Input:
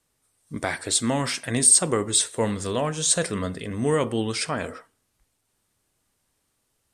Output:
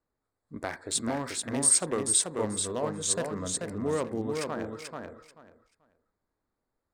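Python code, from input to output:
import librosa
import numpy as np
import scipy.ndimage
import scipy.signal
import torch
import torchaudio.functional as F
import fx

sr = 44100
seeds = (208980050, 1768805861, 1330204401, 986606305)

y = fx.wiener(x, sr, points=15)
y = fx.peak_eq(y, sr, hz=130.0, db=-6.0, octaves=0.93)
y = fx.echo_feedback(y, sr, ms=436, feedback_pct=19, wet_db=-4.5)
y = F.gain(torch.from_numpy(y), -6.0).numpy()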